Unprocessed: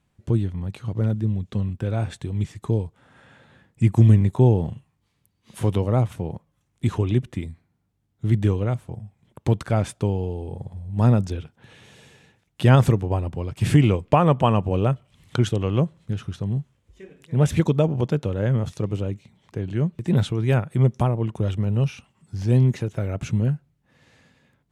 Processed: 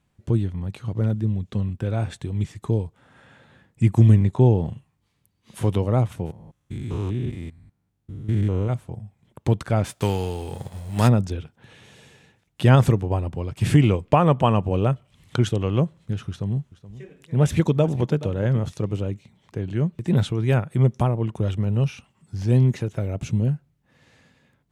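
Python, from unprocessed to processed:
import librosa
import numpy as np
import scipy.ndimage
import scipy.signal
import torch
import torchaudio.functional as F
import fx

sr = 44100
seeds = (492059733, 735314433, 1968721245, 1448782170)

y = fx.lowpass(x, sr, hz=7500.0, slope=12, at=(4.23, 4.66))
y = fx.spec_steps(y, sr, hold_ms=200, at=(6.25, 8.68), fade=0.02)
y = fx.envelope_flatten(y, sr, power=0.6, at=(9.84, 11.07), fade=0.02)
y = fx.echo_single(y, sr, ms=425, db=-16.5, at=(16.29, 18.68))
y = fx.peak_eq(y, sr, hz=1500.0, db=-7.5, octaves=1.0, at=(23.0, 23.51))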